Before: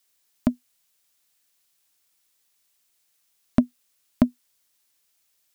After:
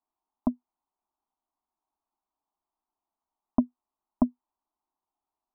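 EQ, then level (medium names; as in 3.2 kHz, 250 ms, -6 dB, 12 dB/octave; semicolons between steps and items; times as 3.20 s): four-pole ladder low-pass 1.1 kHz, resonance 45%; static phaser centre 510 Hz, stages 6; +5.0 dB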